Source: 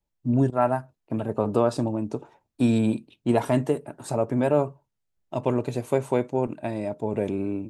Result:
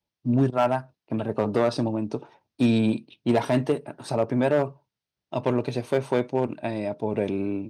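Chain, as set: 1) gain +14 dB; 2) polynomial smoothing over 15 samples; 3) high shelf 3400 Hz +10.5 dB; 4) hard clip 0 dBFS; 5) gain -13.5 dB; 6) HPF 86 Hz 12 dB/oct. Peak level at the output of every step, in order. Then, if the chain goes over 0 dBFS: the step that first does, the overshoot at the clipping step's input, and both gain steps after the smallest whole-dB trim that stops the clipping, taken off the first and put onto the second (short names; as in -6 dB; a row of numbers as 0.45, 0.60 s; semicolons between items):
+6.0, +6.0, +6.5, 0.0, -13.5, -10.5 dBFS; step 1, 6.5 dB; step 1 +7 dB, step 5 -6.5 dB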